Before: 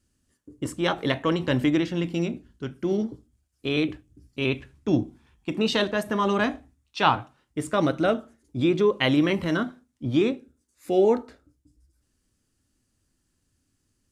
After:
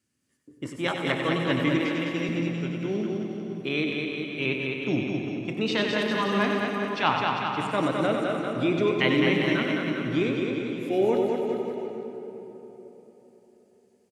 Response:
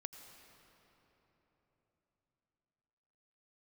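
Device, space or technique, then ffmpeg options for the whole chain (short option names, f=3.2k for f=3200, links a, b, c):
PA in a hall: -filter_complex "[0:a]highpass=f=110:w=0.5412,highpass=f=110:w=1.3066,equalizer=f=2.2k:t=o:w=0.52:g=7,aecho=1:1:95:0.376[a];[1:a]atrim=start_sample=2205[b];[a][b]afir=irnorm=-1:irlink=0,aecho=1:1:210|399|569.1|722.2|860:0.631|0.398|0.251|0.158|0.1,acrossover=split=6900[c][d];[d]acompressor=threshold=-56dB:ratio=4:attack=1:release=60[e];[c][e]amix=inputs=2:normalize=0,asettb=1/sr,asplit=3[f][g][h];[f]atrim=end=1.784[i];[g]atrim=start=1.78:end=2.29,asetpts=PTS-STARTPTS,afade=t=in:d=0.004:c=qsin,afade=t=out:st=0.506:d=0.004:c=qsin,highpass=220[j];[h]atrim=start=2.286[k];[i][j]acrossfade=d=0.004:c1=hsin:c2=qsin[l];[l][k]acrossfade=d=0.004:c1=qsin:c2=hsin"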